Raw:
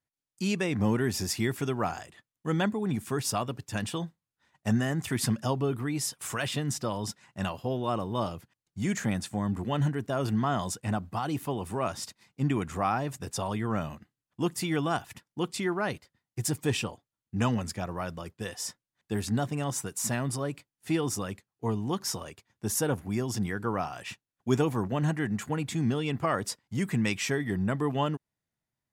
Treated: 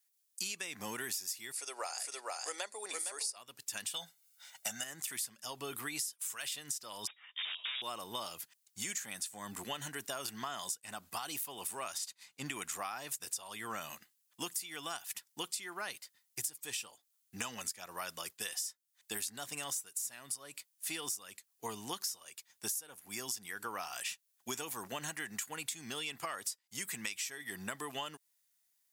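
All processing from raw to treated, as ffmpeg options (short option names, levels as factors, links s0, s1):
-filter_complex "[0:a]asettb=1/sr,asplit=3[s0][s1][s2];[s0]atrim=end=1.524[s3];[s1]atrim=start=1.52:end=3.37,asetpts=PTS-STARTPTS,afade=t=in:d=0.004:c=qsin,afade=t=out:st=1.846:d=0.004:c=qsin,highpass=f=410:w=0.5412,highpass=f=410:w=1.3066,equalizer=f=540:t=q:w=4:g=6,equalizer=f=1100:t=q:w=4:g=-3,equalizer=f=1600:t=q:w=4:g=-5,equalizer=f=3200:t=q:w=4:g=-9,equalizer=f=4600:t=q:w=4:g=8,equalizer=f=9500:t=q:w=4:g=8,lowpass=f=9800:w=0.5412,lowpass=f=9800:w=1.3066,aecho=1:1:461:0.531,atrim=end_sample=81585[s4];[s2]atrim=start=3.366[s5];[s3][s4]acrossfade=d=0.004:c1=hsin:c2=qsin[s6];[s6][s5]acrossfade=d=0.004:c1=qsin:c2=hsin,asettb=1/sr,asplit=3[s7][s8][s9];[s7]atrim=end=3.944[s10];[s8]atrim=start=3.94:end=4.84,asetpts=PTS-STARTPTS,afade=t=in:d=0.004:c=qsin,afade=t=out:st=0.896:d=0.004:c=qsin,highpass=f=270:p=1,aecho=1:1:1.4:0.78,atrim=end_sample=39690,acontrast=80[s11];[s9]atrim=start=4.836[s12];[s10][s11]acrossfade=d=0.004:c1=hsin:c2=qsin[s13];[s13][s12]acrossfade=d=0.004:c1=qsin:c2=hsin,asettb=1/sr,asplit=3[s14][s15][s16];[s14]atrim=end=7.074[s17];[s15]atrim=start=7.07:end=7.82,asetpts=PTS-STARTPTS,afade=t=in:d=0.004:c=qsin,afade=t=out:st=0.746:d=0.004:c=qsin,highpass=380,aeval=exprs='(mod(37.6*val(0)+1,2)-1)/37.6':c=same,lowpass=f=3200:t=q:w=0.5098,lowpass=f=3200:t=q:w=0.6013,lowpass=f=3200:t=q:w=0.9,lowpass=f=3200:t=q:w=2.563,afreqshift=-3800[s18];[s16]atrim=start=7.816[s19];[s17][s18]acrossfade=d=0.004:c1=hsin:c2=qsin[s20];[s20][s19]acrossfade=d=0.004:c1=qsin:c2=hsin,asettb=1/sr,asplit=3[s21][s22][s23];[s21]atrim=end=11.984[s24];[s22]atrim=start=11.98:end=12.46,asetpts=PTS-STARTPTS,afade=t=in:d=0.004:c=qsin,afade=t=out:st=0.476:d=0.004:c=qsin,highshelf=f=8700:g=-10.5,bandreject=f=5400:w=11[s25];[s23]atrim=start=12.456[s26];[s24][s25]acrossfade=d=0.004:c1=hsin:c2=qsin[s27];[s27][s26]acrossfade=d=0.004:c1=qsin:c2=hsin,acontrast=53,aderivative,acompressor=threshold=0.00562:ratio=16,volume=2.82"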